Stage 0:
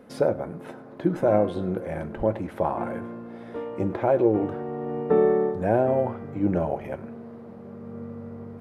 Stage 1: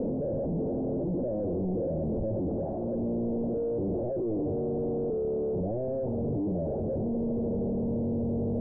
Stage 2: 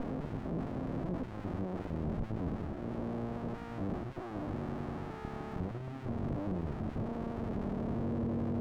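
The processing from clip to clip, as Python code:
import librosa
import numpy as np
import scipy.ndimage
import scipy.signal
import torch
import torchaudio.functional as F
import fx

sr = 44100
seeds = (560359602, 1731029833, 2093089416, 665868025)

y1 = np.sign(x) * np.sqrt(np.mean(np.square(x)))
y1 = scipy.signal.sosfilt(scipy.signal.butter(6, 610.0, 'lowpass', fs=sr, output='sos'), y1)
y1 = fx.transient(y1, sr, attack_db=-7, sustain_db=4)
y1 = y1 * 10.0 ** (-2.0 / 20.0)
y2 = fx.running_max(y1, sr, window=65)
y2 = y2 * 10.0 ** (-3.0 / 20.0)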